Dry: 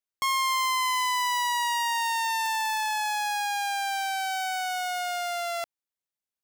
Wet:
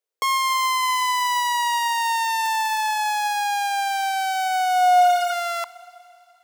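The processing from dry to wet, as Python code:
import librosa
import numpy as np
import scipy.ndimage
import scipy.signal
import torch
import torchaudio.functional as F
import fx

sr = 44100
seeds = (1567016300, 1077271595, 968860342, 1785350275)

y = fx.filter_sweep_highpass(x, sr, from_hz=460.0, to_hz=1000.0, start_s=4.3, end_s=5.5, q=6.3)
y = fx.rev_schroeder(y, sr, rt60_s=2.9, comb_ms=26, drr_db=18.0)
y = fx.spec_repair(y, sr, seeds[0], start_s=5.03, length_s=0.27, low_hz=1400.0, high_hz=12000.0, source='before')
y = y * librosa.db_to_amplitude(3.0)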